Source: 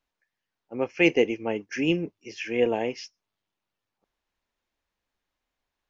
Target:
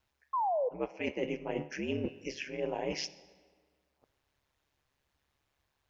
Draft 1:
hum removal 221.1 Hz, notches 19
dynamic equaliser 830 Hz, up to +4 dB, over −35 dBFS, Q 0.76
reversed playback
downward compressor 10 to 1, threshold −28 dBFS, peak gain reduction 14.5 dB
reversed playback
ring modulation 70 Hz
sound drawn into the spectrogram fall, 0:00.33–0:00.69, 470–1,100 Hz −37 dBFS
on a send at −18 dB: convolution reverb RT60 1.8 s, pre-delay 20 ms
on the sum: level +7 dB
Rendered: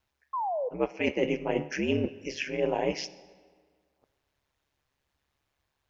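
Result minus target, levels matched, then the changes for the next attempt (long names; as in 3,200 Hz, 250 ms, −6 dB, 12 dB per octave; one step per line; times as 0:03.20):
downward compressor: peak gain reduction −7 dB
change: downward compressor 10 to 1, threshold −36 dBFS, peak gain reduction 22 dB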